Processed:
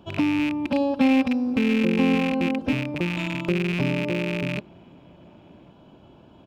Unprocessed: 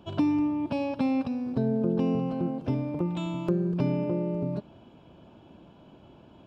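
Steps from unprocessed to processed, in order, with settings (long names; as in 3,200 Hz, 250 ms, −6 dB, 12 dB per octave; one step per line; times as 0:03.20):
loose part that buzzes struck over −32 dBFS, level −21 dBFS
0:00.65–0:02.73: comb filter 3.8 ms, depth 91%
slap from a distant wall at 190 metres, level −29 dB
level +2 dB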